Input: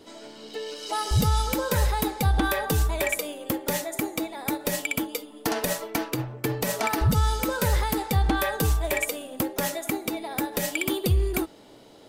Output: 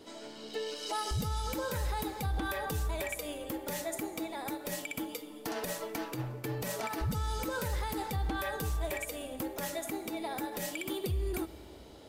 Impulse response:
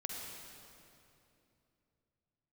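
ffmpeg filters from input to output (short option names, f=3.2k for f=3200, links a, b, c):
-filter_complex "[0:a]alimiter=limit=-23dB:level=0:latency=1:release=137,asplit=2[a][b];[1:a]atrim=start_sample=2205[c];[b][c]afir=irnorm=-1:irlink=0,volume=-13dB[d];[a][d]amix=inputs=2:normalize=0,volume=-4dB"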